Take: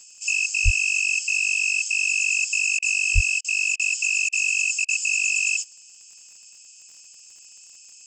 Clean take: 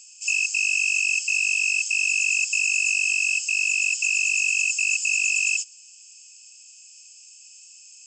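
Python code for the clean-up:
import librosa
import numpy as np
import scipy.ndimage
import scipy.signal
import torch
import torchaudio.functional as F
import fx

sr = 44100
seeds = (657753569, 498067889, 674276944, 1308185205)

y = fx.fix_declick_ar(x, sr, threshold=6.5)
y = fx.fix_deplosive(y, sr, at_s=(0.64, 3.14))
y = fx.fix_interpolate(y, sr, at_s=(2.79, 3.41, 3.76, 4.29, 4.85), length_ms=33.0)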